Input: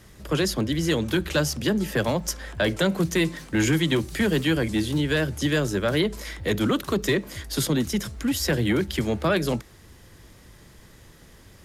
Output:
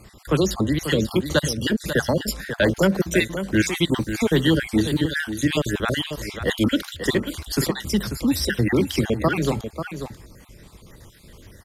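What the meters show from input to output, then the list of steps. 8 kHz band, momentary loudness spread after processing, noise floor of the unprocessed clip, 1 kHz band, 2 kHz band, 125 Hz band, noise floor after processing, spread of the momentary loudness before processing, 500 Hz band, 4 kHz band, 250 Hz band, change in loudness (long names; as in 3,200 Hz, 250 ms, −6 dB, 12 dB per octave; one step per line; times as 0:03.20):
+1.0 dB, 7 LU, −51 dBFS, +2.0 dB, +2.5 dB, +1.5 dB, −48 dBFS, 5 LU, +2.0 dB, +2.0 dB, +2.5 dB, +2.0 dB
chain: time-frequency cells dropped at random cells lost 47%
on a send: single-tap delay 540 ms −9.5 dB
on the sum: level +4.5 dB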